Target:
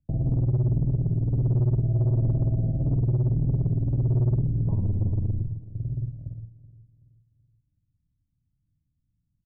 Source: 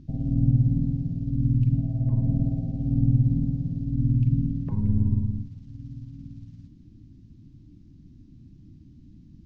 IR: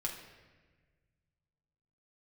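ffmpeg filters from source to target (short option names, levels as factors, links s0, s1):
-filter_complex "[0:a]aemphasis=mode=production:type=50fm,agate=range=0.0158:threshold=0.0126:ratio=16:detection=peak,firequalizer=gain_entry='entry(130,0);entry(230,-12);entry(360,-16);entry(590,-1);entry(1600,-29)':delay=0.05:min_phase=1,asplit=2[s0][s1];[s1]acompressor=threshold=0.02:ratio=6,volume=0.794[s2];[s0][s2]amix=inputs=2:normalize=0,alimiter=limit=0.141:level=0:latency=1:release=379,acrossover=split=200[s3][s4];[s3]asoftclip=type=tanh:threshold=0.0316[s5];[s5][s4]amix=inputs=2:normalize=0,asplit=2[s6][s7];[s7]adelay=45,volume=0.282[s8];[s6][s8]amix=inputs=2:normalize=0,asplit=2[s9][s10];[s10]adelay=378,lowpass=f=840:p=1,volume=0.141,asplit=2[s11][s12];[s12]adelay=378,lowpass=f=840:p=1,volume=0.43,asplit=2[s13][s14];[s14]adelay=378,lowpass=f=840:p=1,volume=0.43,asplit=2[s15][s16];[s16]adelay=378,lowpass=f=840:p=1,volume=0.43[s17];[s9][s11][s13][s15][s17]amix=inputs=5:normalize=0,volume=2.11"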